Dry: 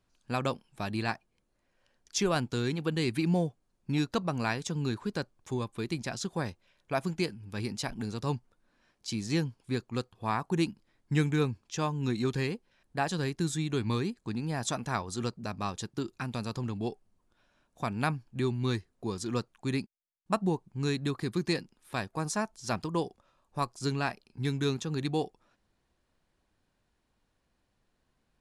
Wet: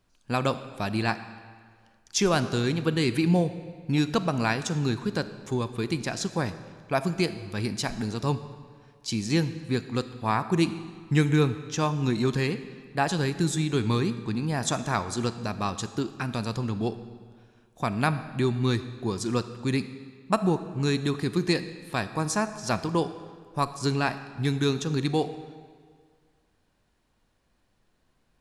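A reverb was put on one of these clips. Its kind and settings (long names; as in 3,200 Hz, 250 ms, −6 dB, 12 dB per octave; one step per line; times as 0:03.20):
comb and all-pass reverb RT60 1.8 s, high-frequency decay 0.85×, pre-delay 0 ms, DRR 11.5 dB
level +5 dB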